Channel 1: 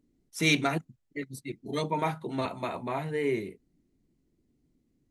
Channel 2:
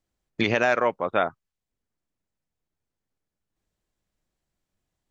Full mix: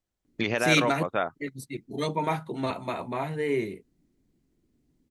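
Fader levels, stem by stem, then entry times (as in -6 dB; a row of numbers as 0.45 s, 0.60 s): +1.5 dB, -4.5 dB; 0.25 s, 0.00 s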